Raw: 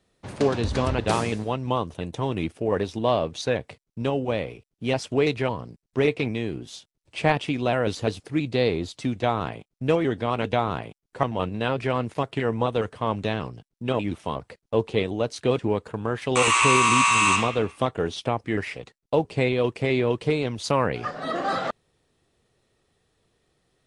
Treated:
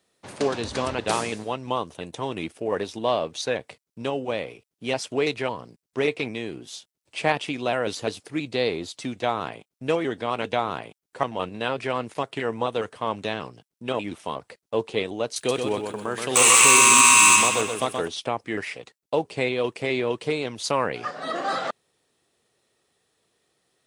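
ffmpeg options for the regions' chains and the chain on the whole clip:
-filter_complex "[0:a]asettb=1/sr,asplit=3[s0][s1][s2];[s0]atrim=end=15.364[s3];[s1]atrim=start=15.36:end=18.08,asetpts=PTS-STARTPTS,afade=t=in:d=0.004:c=qsin,afade=t=out:st=2.716:d=0.004:c=qsin,aemphasis=mode=production:type=50fm,asoftclip=type=hard:threshold=0.316,aecho=1:1:126|252|378|504|630:0.531|0.218|0.0892|0.0366|0.015,atrim=end_sample=119952[s4];[s2]atrim=start=18.076[s5];[s3][s4]acrossfade=d=0.004:c1=hsin:c2=qsin[s6];[s6][s5]acrossfade=d=0.004:c1=qsin:c2=hsin,highpass=f=340:p=1,highshelf=f=6200:g=6.5"

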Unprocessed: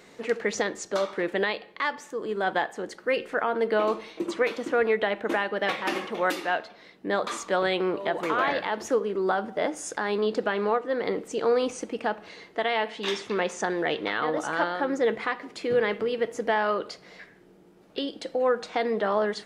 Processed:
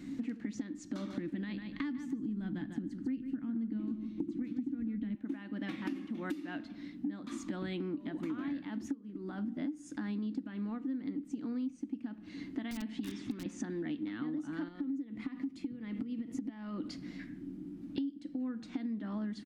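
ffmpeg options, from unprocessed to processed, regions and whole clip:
-filter_complex "[0:a]asettb=1/sr,asplit=3[s0][s1][s2];[s0]atrim=end=0.854[s3];[s1]atrim=start=0.85:end=5.15,asetpts=PTS-STARTPTS,afade=t=in:d=0.004:c=qsin,afade=t=out:st=4.296:d=0.004:c=qsin,asubboost=boost=9.5:cutoff=240,aecho=1:1:148|296|444:0.282|0.0592|0.0124,atrim=end_sample=189630[s4];[s2]atrim=start=5.146[s5];[s3][s4]acrossfade=d=0.004:c1=hsin:c2=qsin[s6];[s6][s5]acrossfade=d=0.004:c1=qsin:c2=hsin,asettb=1/sr,asplit=3[s7][s8][s9];[s7]atrim=end=8.924[s10];[s8]atrim=start=8.92:end=9.58,asetpts=PTS-STARTPTS,afade=t=in:d=0.004:c=qsin,afade=t=out:st=0.656:d=0.004:c=qsin,bandreject=f=60:t=h:w=6,bandreject=f=120:t=h:w=6,bandreject=f=180:t=h:w=6,bandreject=f=240:t=h:w=6,bandreject=f=300:t=h:w=6,bandreject=f=360:t=h:w=6,bandreject=f=420:t=h:w=6,bandreject=f=480:t=h:w=6,acompressor=threshold=0.0224:ratio=3:attack=3.2:release=140:knee=1:detection=peak[s11];[s9]atrim=start=9.576[s12];[s10][s11]acrossfade=d=0.004:c1=hsin:c2=qsin[s13];[s13][s12]acrossfade=d=0.004:c1=qsin:c2=hsin,asettb=1/sr,asplit=3[s14][s15][s16];[s14]atrim=end=12.714[s17];[s15]atrim=start=12.71:end=13.46,asetpts=PTS-STARTPTS,afade=t=in:d=0.004:c=qsin,afade=t=out:st=0.746:d=0.004:c=qsin,lowshelf=f=71:g=4.5,acrossover=split=360|3200[s18][s19][s20];[s18]acompressor=threshold=0.0141:ratio=4[s21];[s19]acompressor=threshold=0.0282:ratio=4[s22];[s20]acompressor=threshold=0.01:ratio=4[s23];[s21][s22][s23]amix=inputs=3:normalize=0,aeval=exprs='(mod(12.6*val(0)+1,2)-1)/12.6':c=same[s24];[s16]atrim=start=13.456[s25];[s17][s24]acrossfade=d=0.004:c1=hsin:c2=qsin[s26];[s26][s25]acrossfade=d=0.004:c1=qsin:c2=hsin,asettb=1/sr,asplit=3[s27][s28][s29];[s27]atrim=end=14.684[s30];[s28]atrim=start=14.68:end=16.88,asetpts=PTS-STARTPTS,afade=t=in:d=0.004:c=qsin,afade=t=out:st=2.196:d=0.004:c=qsin,bandreject=f=1600:w=8.4,acompressor=threshold=0.0282:ratio=10:attack=3.2:release=140:knee=1:detection=peak[s31];[s29]atrim=start=16.876[s32];[s30][s31]acrossfade=d=0.004:c1=hsin:c2=qsin[s33];[s33][s32]acrossfade=d=0.004:c1=qsin:c2=hsin,firequalizer=gain_entry='entry(190,0);entry(280,13);entry(410,-24);entry(1800,-16)':delay=0.05:min_phase=1,acompressor=threshold=0.00562:ratio=10,volume=3.16"

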